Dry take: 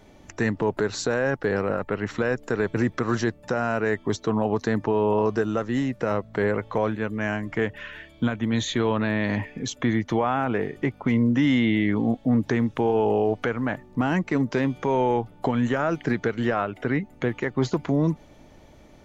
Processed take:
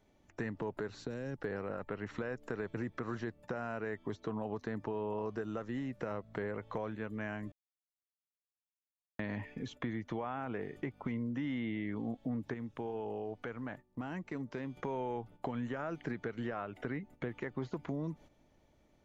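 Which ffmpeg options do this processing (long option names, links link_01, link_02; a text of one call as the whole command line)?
ffmpeg -i in.wav -filter_complex "[0:a]asettb=1/sr,asplit=3[link_01][link_02][link_03];[link_01]atrim=end=0.884[link_04];[link_02]atrim=start=0.88:end=1.38,asetpts=PTS-STARTPTS,afade=type=in:duration=0.004:curve=qsin,afade=type=out:start_time=0.496:duration=0.004:curve=qsin,acrossover=split=390|3000[link_05][link_06][link_07];[link_06]acompressor=threshold=-46dB:ratio=2.5:attack=3.2:release=140:knee=2.83:detection=peak[link_08];[link_05][link_08][link_07]amix=inputs=3:normalize=0[link_09];[link_03]atrim=start=1.376[link_10];[link_04][link_09]acrossfade=duration=0.004:curve1=hsin:curve2=qsin[link_11];[link_11][link_10]acrossfade=duration=0.004:curve1=qsin:curve2=hsin,asplit=5[link_12][link_13][link_14][link_15][link_16];[link_12]atrim=end=7.52,asetpts=PTS-STARTPTS,afade=type=out:start_time=7.516:duration=0.004:curve=hsin[link_17];[link_13]atrim=start=7.52:end=9.19,asetpts=PTS-STARTPTS,volume=0[link_18];[link_14]atrim=start=9.19:end=12.542,asetpts=PTS-STARTPTS,afade=type=in:duration=0.004:curve=hsin[link_19];[link_15]atrim=start=12.538:end=14.772,asetpts=PTS-STARTPTS,volume=-7dB[link_20];[link_16]atrim=start=14.768[link_21];[link_17][link_18][link_19]concat=n=3:v=0:a=1[link_22];[link_22][link_20]acrossfade=duration=0.004:curve1=hsin:curve2=hsin[link_23];[link_23][link_21]acrossfade=duration=0.004:curve1=hsin:curve2=hsin,acrossover=split=3300[link_24][link_25];[link_25]acompressor=threshold=-51dB:ratio=4:attack=1:release=60[link_26];[link_24][link_26]amix=inputs=2:normalize=0,agate=range=-11dB:threshold=-40dB:ratio=16:detection=peak,acompressor=threshold=-30dB:ratio=3,volume=-7dB" out.wav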